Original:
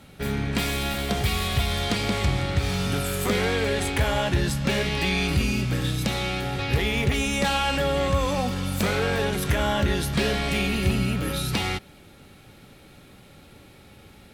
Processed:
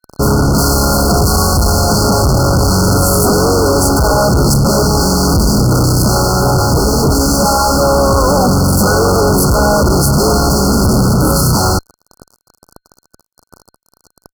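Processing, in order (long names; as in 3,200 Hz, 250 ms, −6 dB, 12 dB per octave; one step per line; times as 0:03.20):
pitch-shifted copies added −5 semitones −7 dB, +4 semitones −15 dB
fuzz pedal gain 37 dB, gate −40 dBFS
brick-wall band-stop 1,500–4,200 Hz
level +5 dB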